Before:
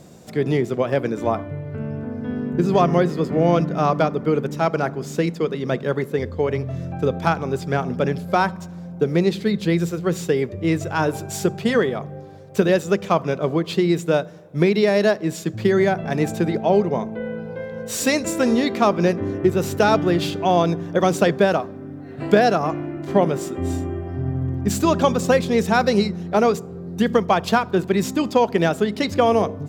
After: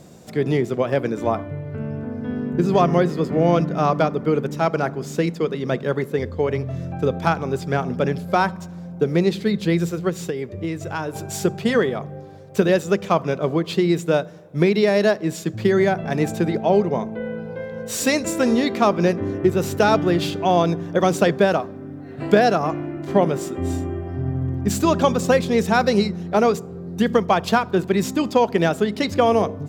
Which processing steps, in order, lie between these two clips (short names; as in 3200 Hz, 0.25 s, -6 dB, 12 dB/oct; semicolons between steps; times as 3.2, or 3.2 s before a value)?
10.09–11.16 compressor 6:1, threshold -23 dBFS, peak gain reduction 8.5 dB